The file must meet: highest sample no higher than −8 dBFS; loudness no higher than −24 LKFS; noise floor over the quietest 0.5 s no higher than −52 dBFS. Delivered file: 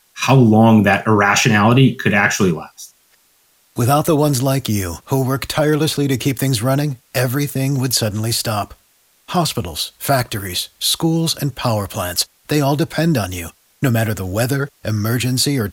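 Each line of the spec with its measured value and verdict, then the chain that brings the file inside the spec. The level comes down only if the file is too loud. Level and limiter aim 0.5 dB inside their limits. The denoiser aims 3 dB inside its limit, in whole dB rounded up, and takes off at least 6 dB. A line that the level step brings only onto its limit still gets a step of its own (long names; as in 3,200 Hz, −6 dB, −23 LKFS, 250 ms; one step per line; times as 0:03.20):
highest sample −2.0 dBFS: out of spec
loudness −16.5 LKFS: out of spec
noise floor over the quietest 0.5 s −57 dBFS: in spec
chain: level −8 dB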